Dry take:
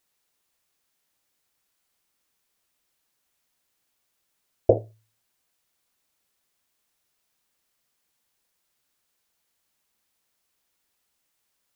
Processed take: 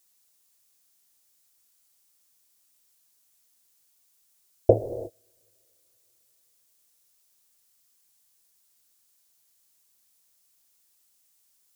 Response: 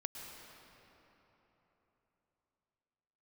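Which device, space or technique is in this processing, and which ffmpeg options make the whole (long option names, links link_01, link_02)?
keyed gated reverb: -filter_complex "[0:a]bass=frequency=250:gain=1,treble=frequency=4000:gain=13,asplit=3[link_01][link_02][link_03];[1:a]atrim=start_sample=2205[link_04];[link_02][link_04]afir=irnorm=-1:irlink=0[link_05];[link_03]apad=whole_len=518283[link_06];[link_05][link_06]sidechaingate=range=-33dB:threshold=-55dB:ratio=16:detection=peak,volume=-2.5dB[link_07];[link_01][link_07]amix=inputs=2:normalize=0,volume=-3dB"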